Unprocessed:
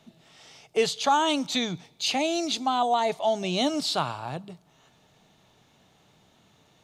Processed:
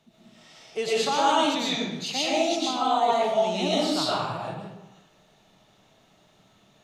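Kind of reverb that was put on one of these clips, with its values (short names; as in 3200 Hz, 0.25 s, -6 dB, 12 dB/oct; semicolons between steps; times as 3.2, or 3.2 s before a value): digital reverb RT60 1 s, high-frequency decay 0.75×, pre-delay 75 ms, DRR -7.5 dB; gain -6.5 dB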